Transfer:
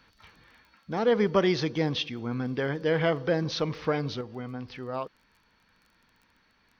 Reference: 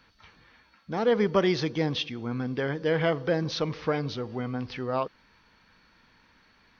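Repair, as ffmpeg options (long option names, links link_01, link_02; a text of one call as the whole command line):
ffmpeg -i in.wav -af "adeclick=threshold=4,asetnsamples=nb_out_samples=441:pad=0,asendcmd='4.21 volume volume 5dB',volume=0dB" out.wav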